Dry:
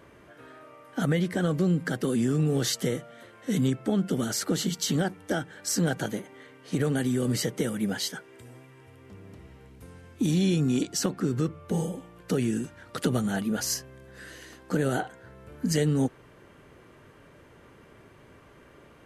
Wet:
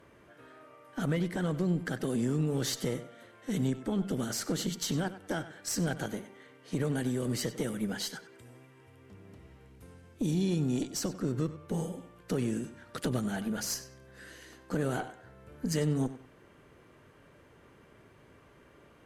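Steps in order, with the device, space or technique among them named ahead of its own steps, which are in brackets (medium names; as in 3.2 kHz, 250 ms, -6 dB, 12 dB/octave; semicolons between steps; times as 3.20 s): rockabilly slapback (valve stage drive 18 dB, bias 0.5; tape echo 96 ms, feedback 29%, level -13 dB, low-pass 6 kHz); 9.94–11.24 s: peaking EQ 1.8 kHz -3 dB 2.1 oct; trim -3 dB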